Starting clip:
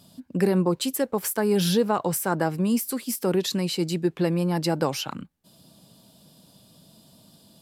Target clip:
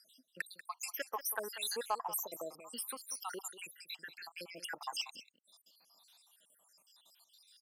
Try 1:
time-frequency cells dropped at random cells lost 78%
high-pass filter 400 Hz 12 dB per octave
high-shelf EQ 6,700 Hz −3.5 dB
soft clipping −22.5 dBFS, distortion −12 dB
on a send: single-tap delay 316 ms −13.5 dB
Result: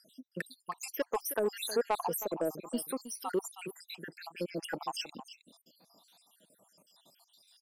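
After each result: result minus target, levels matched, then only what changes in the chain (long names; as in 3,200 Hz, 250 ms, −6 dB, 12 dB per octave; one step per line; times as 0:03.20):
echo 127 ms late; 500 Hz band +7.5 dB
change: single-tap delay 189 ms −13.5 dB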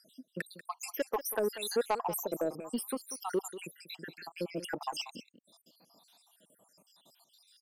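500 Hz band +7.5 dB
change: high-pass filter 1,200 Hz 12 dB per octave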